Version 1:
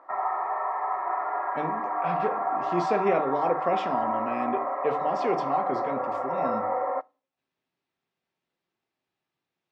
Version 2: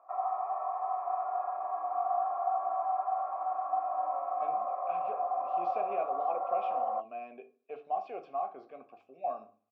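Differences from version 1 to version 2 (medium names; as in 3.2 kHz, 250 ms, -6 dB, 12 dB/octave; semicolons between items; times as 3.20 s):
speech: entry +2.85 s; master: add vowel filter a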